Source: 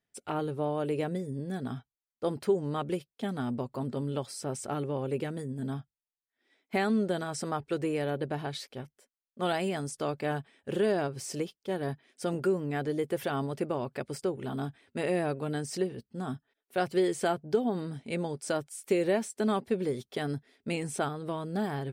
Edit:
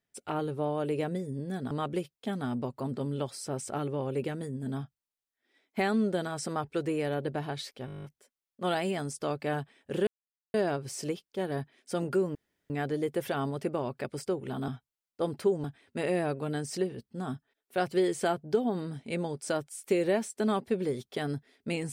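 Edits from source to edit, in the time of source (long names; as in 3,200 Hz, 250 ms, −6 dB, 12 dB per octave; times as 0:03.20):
0:01.71–0:02.67: move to 0:14.64
0:08.82: stutter 0.02 s, 10 plays
0:10.85: splice in silence 0.47 s
0:12.66: splice in room tone 0.35 s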